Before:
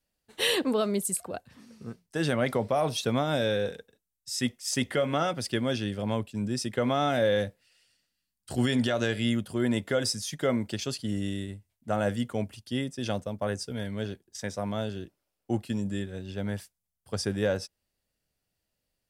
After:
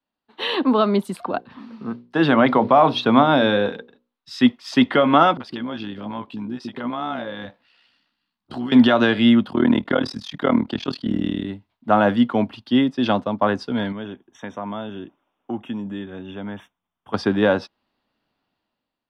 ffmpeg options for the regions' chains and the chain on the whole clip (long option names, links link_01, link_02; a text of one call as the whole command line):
ffmpeg -i in.wav -filter_complex "[0:a]asettb=1/sr,asplit=3[link_01][link_02][link_03];[link_01]atrim=end=1.354[link_04];[link_02]atrim=start=1.35:end=4.31,asetpts=PTS-STARTPTS,afade=type=in:duration=0.004:curve=qsin,afade=type=out:start_time=2.956:duration=0.004:curve=qsin,bass=frequency=250:gain=1,treble=frequency=4000:gain=-3,bandreject=frequency=60:width_type=h:width=6,bandreject=frequency=120:width_type=h:width=6,bandreject=frequency=180:width_type=h:width=6,bandreject=frequency=240:width_type=h:width=6,bandreject=frequency=300:width_type=h:width=6,bandreject=frequency=360:width_type=h:width=6,bandreject=frequency=420:width_type=h:width=6,bandreject=frequency=480:width_type=h:width=6,bandreject=frequency=540:width_type=h:width=6[link_05];[link_03]atrim=start=4.306[link_06];[link_04][link_05]acrossfade=duration=0.004:curve1=hsin:curve2=qsin[link_07];[link_07][link_06]acrossfade=duration=0.004:curve1=qsin:curve2=hsin,asettb=1/sr,asplit=3[link_08][link_09][link_10];[link_08]atrim=end=5.374[link_11];[link_09]atrim=start=5.37:end=8.72,asetpts=PTS-STARTPTS,afade=type=in:duration=0.004:curve=qsin,afade=type=out:start_time=3.346:duration=0.004:curve=qsin,acompressor=threshold=-39dB:ratio=2.5:attack=3.2:release=140:knee=1:detection=peak,tremolo=f=64:d=0.4,acrossover=split=490[link_12][link_13];[link_13]adelay=30[link_14];[link_12][link_14]amix=inputs=2:normalize=0,atrim=end_sample=147735[link_15];[link_10]atrim=start=8.716[link_16];[link_11][link_15]acrossfade=duration=0.004:curve1=hsin:curve2=qsin[link_17];[link_17][link_16]acrossfade=duration=0.004:curve1=qsin:curve2=hsin,asettb=1/sr,asplit=3[link_18][link_19][link_20];[link_18]atrim=end=9.504[link_21];[link_19]atrim=start=9.5:end=11.46,asetpts=PTS-STARTPTS,afade=type=in:duration=0.004:curve=qsin,afade=type=out:start_time=1.956:duration=0.004:curve=qsin,lowshelf=frequency=77:gain=8.5,tremolo=f=39:d=0.974[link_22];[link_20]atrim=start=11.456[link_23];[link_21][link_22]acrossfade=duration=0.004:curve1=hsin:curve2=qsin[link_24];[link_24][link_23]acrossfade=duration=0.004:curve1=qsin:curve2=hsin,asettb=1/sr,asplit=3[link_25][link_26][link_27];[link_25]atrim=end=13.924[link_28];[link_26]atrim=start=13.92:end=17.14,asetpts=PTS-STARTPTS,afade=type=in:duration=0.004:curve=qsin,afade=type=out:start_time=3.216:duration=0.004:curve=qsin,acompressor=threshold=-44dB:ratio=2:attack=3.2:release=140:knee=1:detection=peak,asuperstop=centerf=4500:order=20:qfactor=2.5[link_29];[link_27]atrim=start=17.136[link_30];[link_28][link_29]acrossfade=duration=0.004:curve1=hsin:curve2=qsin[link_31];[link_31][link_30]acrossfade=duration=0.004:curve1=qsin:curve2=hsin,acrossover=split=260 3000:gain=0.178 1 0.0631[link_32][link_33][link_34];[link_32][link_33][link_34]amix=inputs=3:normalize=0,dynaudnorm=framelen=160:gausssize=9:maxgain=12dB,equalizer=frequency=125:width_type=o:width=1:gain=3,equalizer=frequency=250:width_type=o:width=1:gain=9,equalizer=frequency=500:width_type=o:width=1:gain=-7,equalizer=frequency=1000:width_type=o:width=1:gain=9,equalizer=frequency=2000:width_type=o:width=1:gain=-5,equalizer=frequency=4000:width_type=o:width=1:gain=10,equalizer=frequency=8000:width_type=o:width=1:gain=-7" out.wav